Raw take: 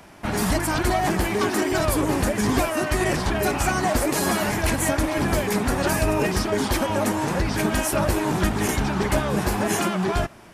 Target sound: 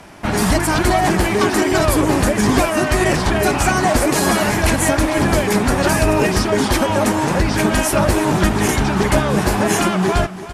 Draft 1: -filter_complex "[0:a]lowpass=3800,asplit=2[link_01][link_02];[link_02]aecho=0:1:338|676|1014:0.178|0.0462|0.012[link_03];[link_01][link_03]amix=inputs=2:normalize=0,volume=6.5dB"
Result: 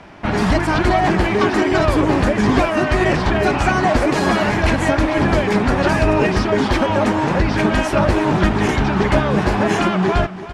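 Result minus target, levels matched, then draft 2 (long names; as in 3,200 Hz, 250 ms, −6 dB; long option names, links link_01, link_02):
8,000 Hz band −12.0 dB
-filter_complex "[0:a]lowpass=12000,asplit=2[link_01][link_02];[link_02]aecho=0:1:338|676|1014:0.178|0.0462|0.012[link_03];[link_01][link_03]amix=inputs=2:normalize=0,volume=6.5dB"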